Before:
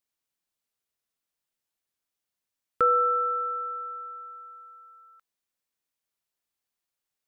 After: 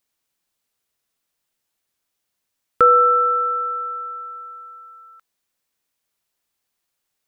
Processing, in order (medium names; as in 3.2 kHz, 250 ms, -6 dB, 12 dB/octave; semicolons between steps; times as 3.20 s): 4.35–4.79 s: peaking EQ 270 Hz +7 dB 0.69 oct; trim +9 dB